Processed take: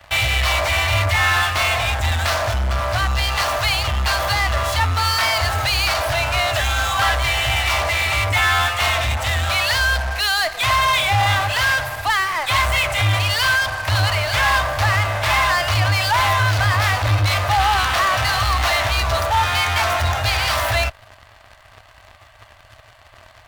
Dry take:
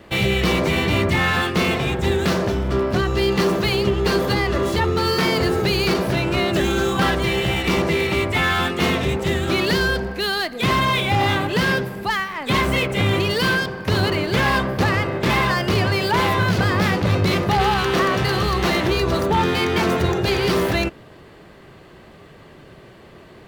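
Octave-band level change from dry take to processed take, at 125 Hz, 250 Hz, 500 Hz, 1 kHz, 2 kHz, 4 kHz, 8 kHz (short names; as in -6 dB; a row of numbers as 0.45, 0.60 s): +1.0, -17.5, -5.5, +3.5, +4.0, +4.0, +7.5 dB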